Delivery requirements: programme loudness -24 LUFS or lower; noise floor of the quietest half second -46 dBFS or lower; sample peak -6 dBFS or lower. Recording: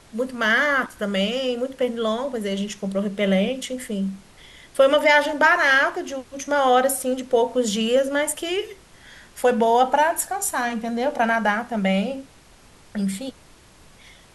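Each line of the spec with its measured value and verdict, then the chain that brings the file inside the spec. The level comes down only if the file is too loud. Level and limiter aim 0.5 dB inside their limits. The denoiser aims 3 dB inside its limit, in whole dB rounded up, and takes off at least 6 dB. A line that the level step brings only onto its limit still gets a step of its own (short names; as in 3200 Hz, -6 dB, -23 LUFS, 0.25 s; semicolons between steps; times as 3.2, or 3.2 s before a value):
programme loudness -21.5 LUFS: fail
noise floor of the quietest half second -50 dBFS: OK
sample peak -5.5 dBFS: fail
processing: gain -3 dB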